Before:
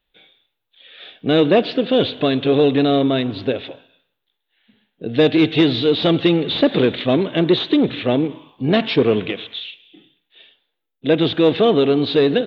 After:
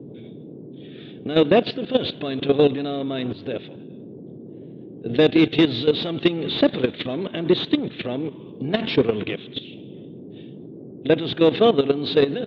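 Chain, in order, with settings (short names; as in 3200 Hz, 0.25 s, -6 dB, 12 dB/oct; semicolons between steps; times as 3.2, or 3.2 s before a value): band noise 120–420 Hz -31 dBFS; level quantiser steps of 13 dB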